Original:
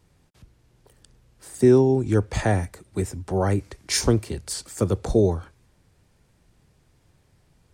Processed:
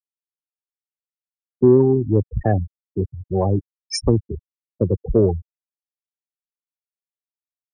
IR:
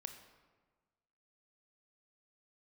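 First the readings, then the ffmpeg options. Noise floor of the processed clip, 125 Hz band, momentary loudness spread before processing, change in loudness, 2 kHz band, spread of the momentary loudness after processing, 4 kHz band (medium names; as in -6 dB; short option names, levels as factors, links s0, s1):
under -85 dBFS, +3.0 dB, 13 LU, +3.0 dB, -8.0 dB, 13 LU, -2.0 dB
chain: -af "afftfilt=real='re*gte(hypot(re,im),0.178)':imag='im*gte(hypot(re,im),0.178)':win_size=1024:overlap=0.75,acontrast=29,volume=0.841"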